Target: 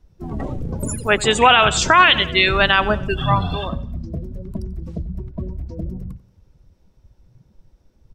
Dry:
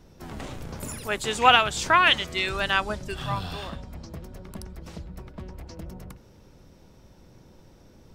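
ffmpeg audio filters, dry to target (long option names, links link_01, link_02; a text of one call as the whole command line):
ffmpeg -i in.wav -af "afftdn=noise_reduction=23:noise_floor=-35,aecho=1:1:91|182|273:0.0944|0.0444|0.0209,alimiter=level_in=13dB:limit=-1dB:release=50:level=0:latency=1,volume=-1dB" out.wav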